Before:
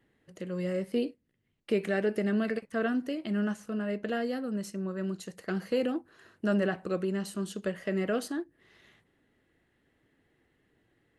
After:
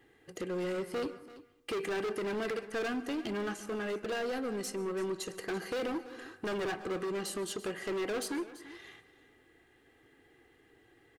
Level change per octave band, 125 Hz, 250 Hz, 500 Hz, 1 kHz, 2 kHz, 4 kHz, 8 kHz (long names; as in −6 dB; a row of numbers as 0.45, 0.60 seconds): −10.0, −7.0, −2.5, +0.5, −1.5, +2.0, +4.5 decibels